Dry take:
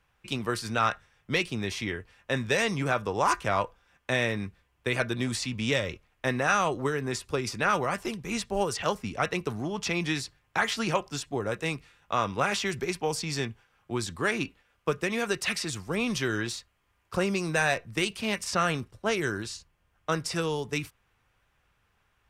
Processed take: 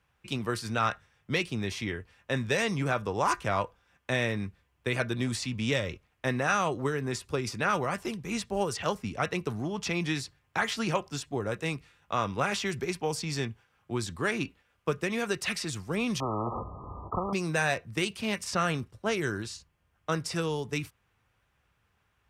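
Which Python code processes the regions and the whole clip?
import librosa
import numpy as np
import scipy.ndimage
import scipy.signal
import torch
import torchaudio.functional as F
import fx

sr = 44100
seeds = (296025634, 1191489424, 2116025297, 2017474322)

y = fx.chain(x, sr, fx.brickwall_lowpass(high_hz=1300.0),
    fx.spectral_comp(ratio=10.0), at=(16.2, 17.33))
y = scipy.signal.sosfilt(scipy.signal.butter(2, 58.0, 'highpass', fs=sr, output='sos'), y)
y = fx.low_shelf(y, sr, hz=220.0, db=4.5)
y = y * librosa.db_to_amplitude(-2.5)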